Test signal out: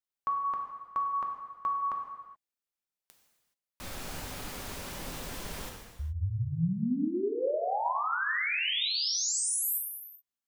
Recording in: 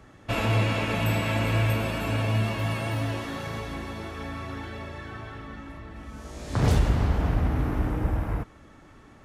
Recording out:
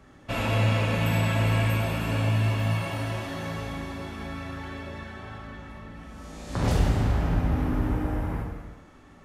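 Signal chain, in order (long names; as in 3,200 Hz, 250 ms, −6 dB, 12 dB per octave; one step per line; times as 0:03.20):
reverb whose tail is shaped and stops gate 450 ms falling, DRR 1 dB
level −3 dB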